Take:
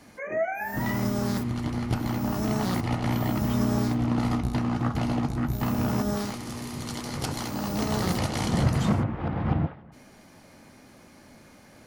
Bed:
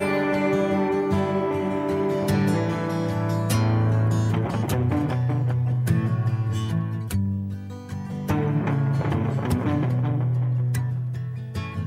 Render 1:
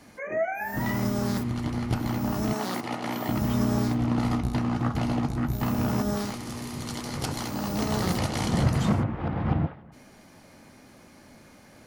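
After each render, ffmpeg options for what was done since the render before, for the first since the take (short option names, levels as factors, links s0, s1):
-filter_complex "[0:a]asettb=1/sr,asplit=3[s0][s1][s2];[s0]atrim=end=2.534[s3];[s1]atrim=start=2.53:end=3.29,asetpts=PTS-STARTPTS,afade=t=in:d=0.004:c=qsin,afade=t=out:st=0.756:d=0.004:c=qsin,highpass=280[s4];[s2]atrim=start=3.286[s5];[s3][s4]acrossfade=d=0.004:c1=hsin:c2=qsin[s6];[s6][s5]acrossfade=d=0.004:c1=qsin:c2=hsin"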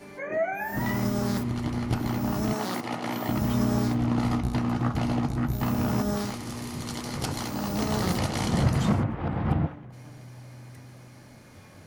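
-filter_complex "[1:a]volume=0.0708[s0];[0:a][s0]amix=inputs=2:normalize=0"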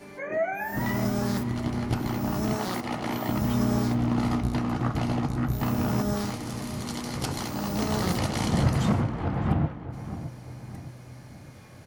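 -filter_complex "[0:a]asplit=2[s0][s1];[s1]adelay=614,lowpass=f=1700:p=1,volume=0.251,asplit=2[s2][s3];[s3]adelay=614,lowpass=f=1700:p=1,volume=0.48,asplit=2[s4][s5];[s5]adelay=614,lowpass=f=1700:p=1,volume=0.48,asplit=2[s6][s7];[s7]adelay=614,lowpass=f=1700:p=1,volume=0.48,asplit=2[s8][s9];[s9]adelay=614,lowpass=f=1700:p=1,volume=0.48[s10];[s0][s2][s4][s6][s8][s10]amix=inputs=6:normalize=0"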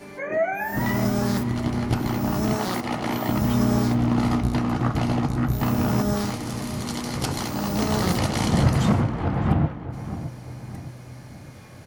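-af "volume=1.58"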